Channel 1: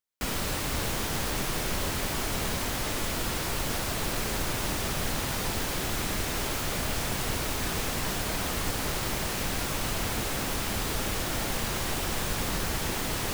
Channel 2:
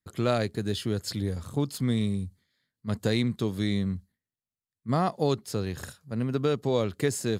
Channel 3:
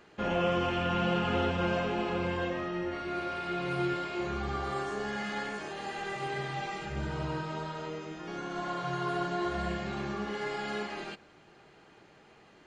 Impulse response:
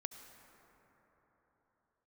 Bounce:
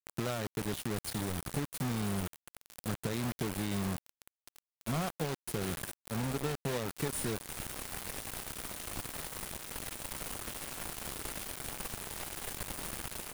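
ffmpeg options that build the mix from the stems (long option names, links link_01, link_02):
-filter_complex "[0:a]adelay=300,volume=-11.5dB,afade=type=in:start_time=6.76:duration=0.36:silence=0.473151[link_01];[1:a]adynamicequalizer=threshold=0.00447:dfrequency=160:dqfactor=5.7:tfrequency=160:tqfactor=5.7:attack=5:release=100:ratio=0.375:range=3.5:mode=boostabove:tftype=bell,volume=-2.5dB[link_02];[2:a]acrossover=split=330|3000[link_03][link_04][link_05];[link_04]acompressor=threshold=-33dB:ratio=6[link_06];[link_03][link_06][link_05]amix=inputs=3:normalize=0,adelay=1700,volume=-18.5dB[link_07];[link_01][link_02]amix=inputs=2:normalize=0,equalizer=frequency=6000:width_type=o:width=0.7:gain=-13.5,acompressor=threshold=-32dB:ratio=6,volume=0dB[link_08];[link_07][link_08]amix=inputs=2:normalize=0,equalizer=frequency=9400:width=5.1:gain=14.5,acrusher=bits=5:mix=0:aa=0.000001"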